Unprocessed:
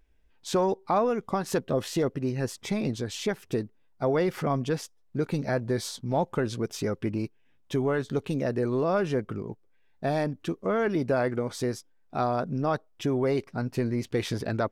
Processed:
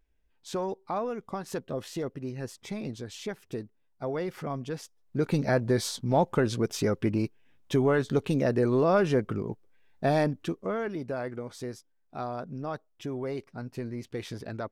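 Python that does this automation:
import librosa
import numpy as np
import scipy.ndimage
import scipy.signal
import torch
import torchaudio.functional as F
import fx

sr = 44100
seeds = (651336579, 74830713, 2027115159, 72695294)

y = fx.gain(x, sr, db=fx.line((4.72, -7.0), (5.32, 2.5), (10.26, 2.5), (10.96, -8.0)))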